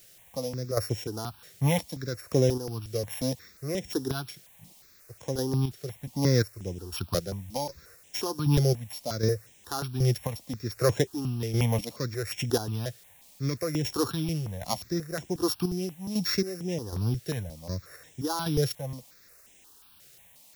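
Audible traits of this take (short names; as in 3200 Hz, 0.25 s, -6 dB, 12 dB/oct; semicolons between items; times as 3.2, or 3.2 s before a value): a buzz of ramps at a fixed pitch in blocks of 8 samples; chopped level 1.3 Hz, depth 60%, duty 35%; a quantiser's noise floor 10-bit, dither triangular; notches that jump at a steady rate 5.6 Hz 260–4500 Hz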